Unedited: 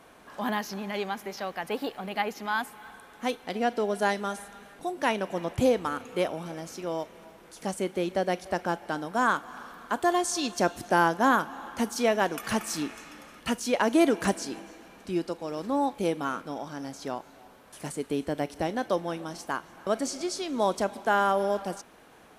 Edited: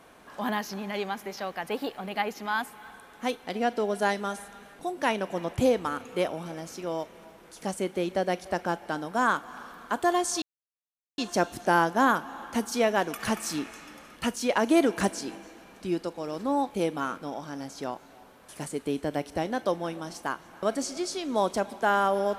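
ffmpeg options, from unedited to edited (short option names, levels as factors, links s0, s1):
-filter_complex "[0:a]asplit=2[s0][s1];[s0]atrim=end=10.42,asetpts=PTS-STARTPTS,afade=t=out:st=10.416:d=0.004:c=hsin,apad=pad_dur=0.76[s2];[s1]atrim=start=10.42,asetpts=PTS-STARTPTS,afade=t=in:d=0.004:c=hsin[s3];[s2][s3]concat=n=2:v=0:a=1"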